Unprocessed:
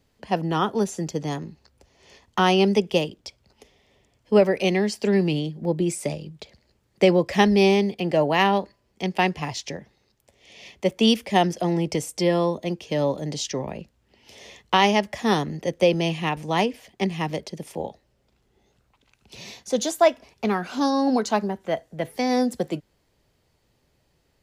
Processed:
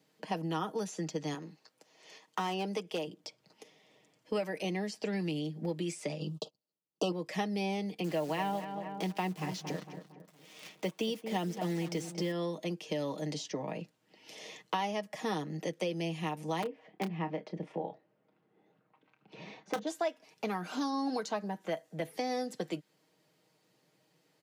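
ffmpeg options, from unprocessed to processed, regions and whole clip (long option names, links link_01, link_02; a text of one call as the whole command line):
ffmpeg -i in.wav -filter_complex "[0:a]asettb=1/sr,asplit=3[link_01][link_02][link_03];[link_01]atrim=end=1.344[link_04];[link_02]atrim=start=1.34:end=3.07,asetpts=PTS-STARTPTS,afade=type=in:duration=0.004:curve=qsin,afade=type=out:start_time=1.726:duration=0.004:curve=qsin,highpass=frequency=390:poles=1,asoftclip=type=hard:threshold=-16.5dB[link_05];[link_03]atrim=start=3.066[link_06];[link_04][link_05]acrossfade=duration=0.004:curve1=hsin:curve2=qsin[link_07];[link_07][link_06]acrossfade=duration=0.004:curve1=qsin:curve2=hsin,asettb=1/sr,asplit=3[link_08][link_09][link_10];[link_08]atrim=end=6.204[link_11];[link_09]atrim=start=6.2:end=7.12,asetpts=PTS-STARTPTS,afade=type=in:duration=0.004:curve=qsin,afade=type=out:start_time=0.916:duration=0.004:curve=qsin,acontrast=88,agate=range=-34dB:threshold=-42dB:ratio=16:release=100:detection=peak,asuperstop=centerf=1900:order=20:qfactor=1.5[link_12];[link_10]atrim=start=7.116[link_13];[link_11][link_12]acrossfade=duration=0.004:curve1=hsin:curve2=qsin[link_14];[link_14][link_13]acrossfade=duration=0.004:curve1=qsin:curve2=hsin,asettb=1/sr,asplit=3[link_15][link_16][link_17];[link_15]atrim=end=8.044[link_18];[link_16]atrim=start=8.04:end=12.32,asetpts=PTS-STARTPTS,afade=type=in:duration=0.004:curve=qsin,afade=type=out:start_time=4.276:duration=0.004:curve=qsin,equalizer=frequency=150:width=0.38:gain=3,acrusher=bits=7:dc=4:mix=0:aa=0.000001,asplit=2[link_19][link_20];[link_20]adelay=229,lowpass=frequency=1600:poles=1,volume=-13dB,asplit=2[link_21][link_22];[link_22]adelay=229,lowpass=frequency=1600:poles=1,volume=0.44,asplit=2[link_23][link_24];[link_24]adelay=229,lowpass=frequency=1600:poles=1,volume=0.44,asplit=2[link_25][link_26];[link_26]adelay=229,lowpass=frequency=1600:poles=1,volume=0.44[link_27];[link_19][link_21][link_23][link_25][link_27]amix=inputs=5:normalize=0,atrim=end_sample=188748[link_28];[link_17]atrim=start=12.316[link_29];[link_18][link_28]acrossfade=duration=0.004:curve1=hsin:curve2=qsin[link_30];[link_30][link_29]acrossfade=duration=0.004:curve1=qsin:curve2=hsin,asettb=1/sr,asplit=3[link_31][link_32][link_33];[link_31]atrim=end=16.624[link_34];[link_32]atrim=start=16.62:end=19.87,asetpts=PTS-STARTPTS,afade=type=in:duration=0.004:curve=qsin,afade=type=out:start_time=3.246:duration=0.004:curve=qsin,lowpass=1800,aeval=exprs='(mod(5.01*val(0)+1,2)-1)/5.01':channel_layout=same,asplit=2[link_35][link_36];[link_36]adelay=29,volume=-11dB[link_37];[link_35][link_37]amix=inputs=2:normalize=0,atrim=end_sample=143325[link_38];[link_33]atrim=start=19.866[link_39];[link_34][link_38]acrossfade=duration=0.004:curve1=hsin:curve2=qsin[link_40];[link_40][link_39]acrossfade=duration=0.004:curve1=qsin:curve2=hsin,highpass=frequency=160:width=0.5412,highpass=frequency=160:width=1.3066,aecho=1:1:6.4:0.55,acrossover=split=1200|6800[link_41][link_42][link_43];[link_41]acompressor=threshold=-31dB:ratio=4[link_44];[link_42]acompressor=threshold=-41dB:ratio=4[link_45];[link_43]acompressor=threshold=-55dB:ratio=4[link_46];[link_44][link_45][link_46]amix=inputs=3:normalize=0,volume=-3dB" out.wav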